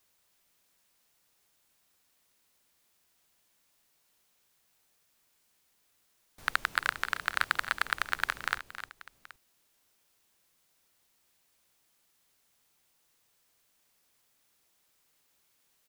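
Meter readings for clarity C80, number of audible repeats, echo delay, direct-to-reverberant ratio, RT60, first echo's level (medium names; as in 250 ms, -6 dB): no reverb, 3, 273 ms, no reverb, no reverb, -15.0 dB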